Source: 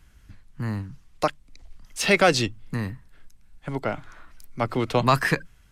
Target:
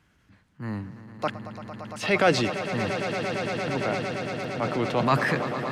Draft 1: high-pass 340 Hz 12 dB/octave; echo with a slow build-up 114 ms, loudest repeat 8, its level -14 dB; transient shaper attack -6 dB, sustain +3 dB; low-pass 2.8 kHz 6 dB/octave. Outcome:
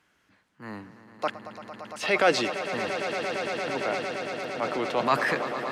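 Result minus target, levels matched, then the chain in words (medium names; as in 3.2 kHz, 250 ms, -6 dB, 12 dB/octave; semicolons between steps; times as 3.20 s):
125 Hz band -11.5 dB
high-pass 130 Hz 12 dB/octave; echo with a slow build-up 114 ms, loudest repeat 8, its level -14 dB; transient shaper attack -6 dB, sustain +3 dB; low-pass 2.8 kHz 6 dB/octave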